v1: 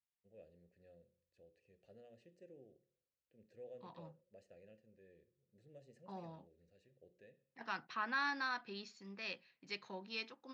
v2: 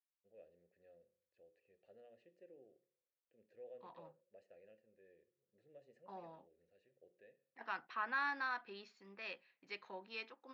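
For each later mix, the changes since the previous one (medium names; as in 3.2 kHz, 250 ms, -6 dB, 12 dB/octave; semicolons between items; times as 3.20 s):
master: add tone controls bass -14 dB, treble -14 dB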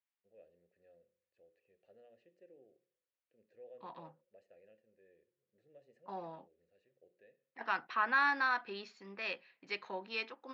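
second voice +8.0 dB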